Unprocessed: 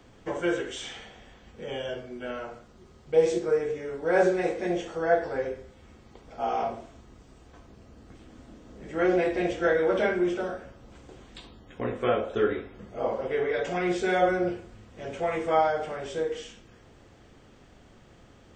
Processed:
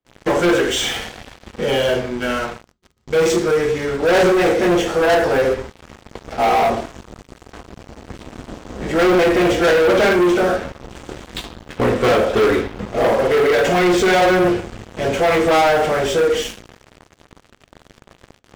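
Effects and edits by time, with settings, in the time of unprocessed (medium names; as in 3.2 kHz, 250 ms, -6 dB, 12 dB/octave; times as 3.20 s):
2.10–4.00 s: peaking EQ 540 Hz -7 dB 1.5 oct
whole clip: gate with hold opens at -45 dBFS; waveshaping leveller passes 5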